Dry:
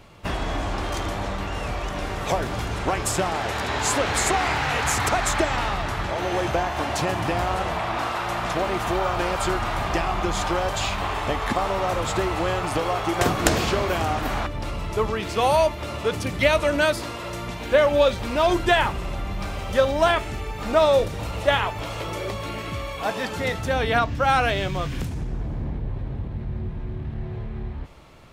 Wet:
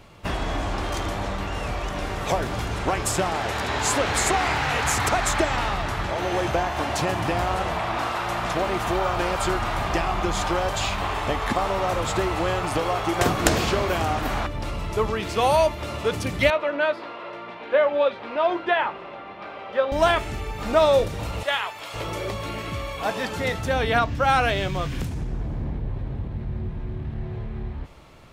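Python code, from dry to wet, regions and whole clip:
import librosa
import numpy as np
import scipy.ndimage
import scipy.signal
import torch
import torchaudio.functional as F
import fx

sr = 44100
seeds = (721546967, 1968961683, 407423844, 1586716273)

y = fx.chain(x, sr, fx.highpass(hz=400.0, slope=12),
    fx.air_absorb(metres=370.0),
    fx.doubler(ms=18.0, db=-13.0), at=(16.5, 19.92))
y = fx.chain(y, sr, fx.highpass(hz=1300.0, slope=6),
    fx.notch(hz=5900.0, q=14.0), at=(21.43, 21.94))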